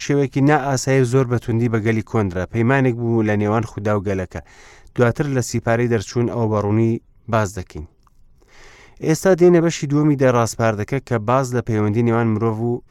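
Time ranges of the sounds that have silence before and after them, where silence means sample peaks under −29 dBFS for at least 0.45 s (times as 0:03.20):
0:04.96–0:07.84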